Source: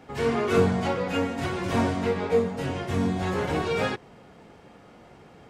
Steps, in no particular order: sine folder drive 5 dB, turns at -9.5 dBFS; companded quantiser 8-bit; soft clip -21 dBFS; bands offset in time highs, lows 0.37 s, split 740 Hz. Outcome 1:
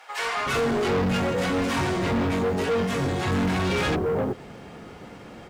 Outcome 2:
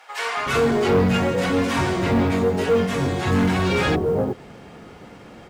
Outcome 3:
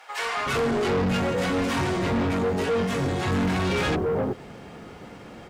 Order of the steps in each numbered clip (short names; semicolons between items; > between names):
bands offset in time > sine folder > soft clip > companded quantiser; bands offset in time > soft clip > sine folder > companded quantiser; sine folder > bands offset in time > companded quantiser > soft clip